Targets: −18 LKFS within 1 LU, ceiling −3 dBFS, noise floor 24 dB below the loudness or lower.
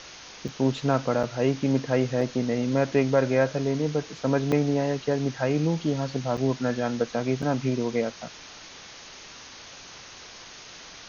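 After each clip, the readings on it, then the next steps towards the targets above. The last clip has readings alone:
number of dropouts 6; longest dropout 5.1 ms; background noise floor −45 dBFS; target noise floor −50 dBFS; integrated loudness −26.0 LKFS; sample peak −8.0 dBFS; target loudness −18.0 LKFS
→ repair the gap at 0:00.48/0:01.23/0:02.21/0:04.52/0:06.37/0:07.42, 5.1 ms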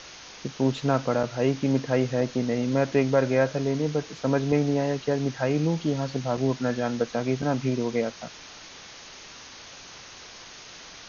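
number of dropouts 0; background noise floor −45 dBFS; target noise floor −50 dBFS
→ broadband denoise 6 dB, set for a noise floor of −45 dBFS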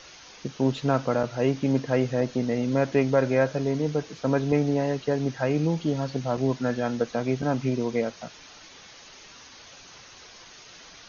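background noise floor −48 dBFS; target noise floor −50 dBFS
→ broadband denoise 6 dB, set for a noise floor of −48 dBFS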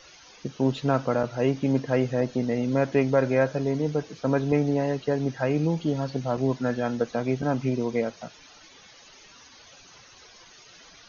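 background noise floor −52 dBFS; integrated loudness −26.0 LKFS; sample peak −8.0 dBFS; target loudness −18.0 LKFS
→ level +8 dB
brickwall limiter −3 dBFS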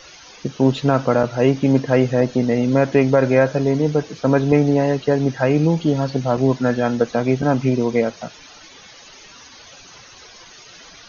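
integrated loudness −18.0 LKFS; sample peak −3.0 dBFS; background noise floor −44 dBFS

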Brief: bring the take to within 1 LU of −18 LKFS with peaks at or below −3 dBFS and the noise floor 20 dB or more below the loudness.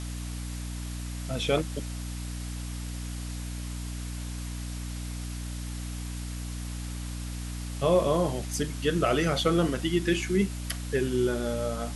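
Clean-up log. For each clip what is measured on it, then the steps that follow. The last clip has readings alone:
mains hum 60 Hz; hum harmonics up to 300 Hz; level of the hum −33 dBFS; background noise floor −36 dBFS; target noise floor −51 dBFS; integrated loudness −30.5 LKFS; sample peak −12.0 dBFS; target loudness −18.0 LKFS
→ hum removal 60 Hz, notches 5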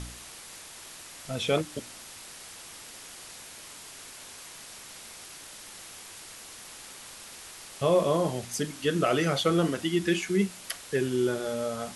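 mains hum none found; background noise floor −46 dBFS; target noise floor −48 dBFS
→ broadband denoise 6 dB, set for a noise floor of −46 dBFS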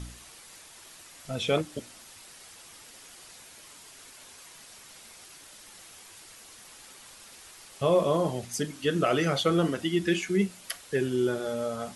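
background noise floor −51 dBFS; integrated loudness −28.0 LKFS; sample peak −12.0 dBFS; target loudness −18.0 LKFS
→ level +10 dB
brickwall limiter −3 dBFS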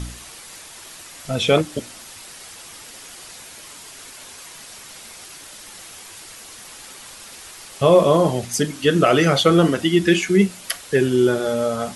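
integrated loudness −18.0 LKFS; sample peak −3.0 dBFS; background noise floor −41 dBFS

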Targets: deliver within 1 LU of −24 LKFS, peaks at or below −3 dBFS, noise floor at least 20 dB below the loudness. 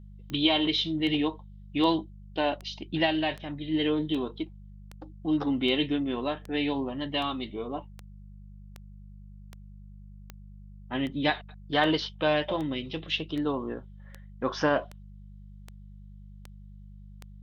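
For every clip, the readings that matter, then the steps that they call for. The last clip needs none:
number of clicks 23; mains hum 50 Hz; hum harmonics up to 200 Hz; level of the hum −45 dBFS; integrated loudness −29.0 LKFS; sample peak −11.0 dBFS; target loudness −24.0 LKFS
→ click removal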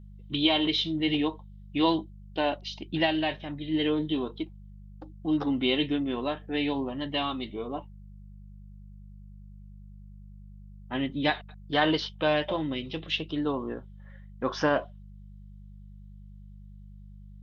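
number of clicks 0; mains hum 50 Hz; hum harmonics up to 200 Hz; level of the hum −45 dBFS
→ hum removal 50 Hz, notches 4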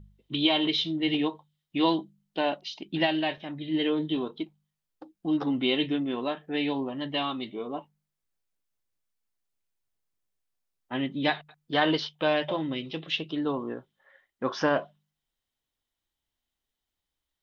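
mains hum none found; integrated loudness −29.0 LKFS; sample peak −10.5 dBFS; target loudness −24.0 LKFS
→ level +5 dB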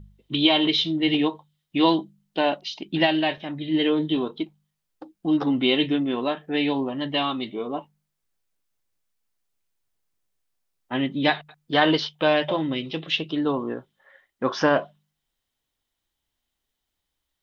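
integrated loudness −24.0 LKFS; sample peak −5.5 dBFS; background noise floor −81 dBFS

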